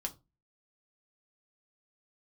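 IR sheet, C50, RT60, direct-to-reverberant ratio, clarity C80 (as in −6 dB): 18.5 dB, 0.25 s, 3.5 dB, 26.0 dB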